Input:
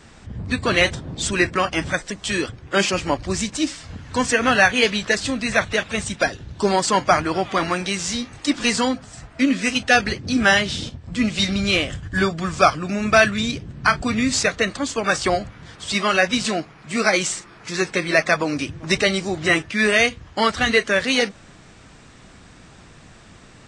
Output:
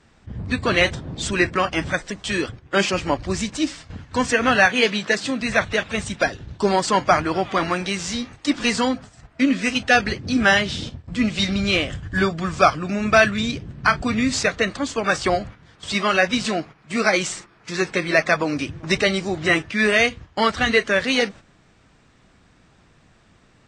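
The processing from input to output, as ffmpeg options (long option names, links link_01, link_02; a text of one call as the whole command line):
ffmpeg -i in.wav -filter_complex "[0:a]asettb=1/sr,asplit=3[link_01][link_02][link_03];[link_01]atrim=end=4.664[link_04];[link_02]atrim=start=4.66:end=5.41,asetpts=PTS-STARTPTS,afade=type=in:duration=0.004:curve=qsin,afade=type=out:start_time=0.746:duration=0.004:curve=qsin,highpass=frequency=140:width=0.5412,highpass=frequency=140:width=1.3066[link_05];[link_03]atrim=start=5.406[link_06];[link_04][link_05]acrossfade=duration=0.004:curve1=hsin:curve2=qsin[link_07];[link_07][link_06]acrossfade=duration=0.004:curve1=qsin:curve2=hsin,agate=range=-9dB:threshold=-36dB:ratio=16:detection=peak,highshelf=frequency=7500:gain=-9" out.wav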